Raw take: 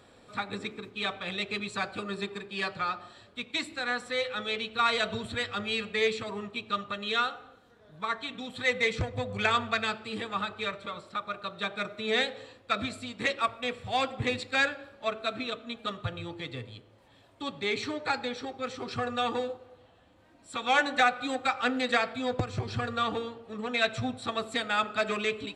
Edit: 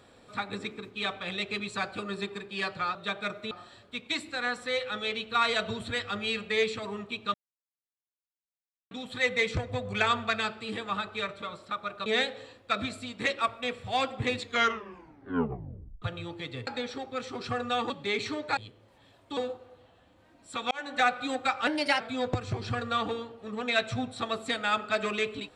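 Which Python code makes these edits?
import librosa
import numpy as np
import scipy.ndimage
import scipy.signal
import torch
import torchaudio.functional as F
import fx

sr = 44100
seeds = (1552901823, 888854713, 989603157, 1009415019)

y = fx.edit(x, sr, fx.silence(start_s=6.78, length_s=1.57),
    fx.move(start_s=11.5, length_s=0.56, to_s=2.95),
    fx.tape_stop(start_s=14.38, length_s=1.64),
    fx.swap(start_s=16.67, length_s=0.8, other_s=18.14, other_length_s=1.23),
    fx.fade_in_span(start_s=20.71, length_s=0.38),
    fx.speed_span(start_s=21.67, length_s=0.39, speed=1.18), tone=tone)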